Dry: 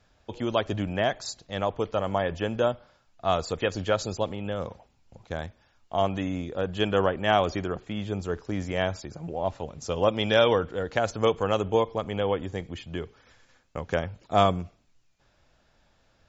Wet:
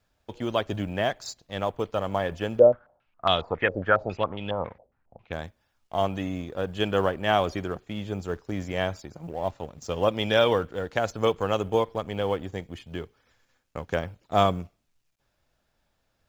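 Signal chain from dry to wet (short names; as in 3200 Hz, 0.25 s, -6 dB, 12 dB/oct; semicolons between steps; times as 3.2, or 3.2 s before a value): G.711 law mismatch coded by A; 2.59–5.33 stepped low-pass 7.3 Hz 550–3400 Hz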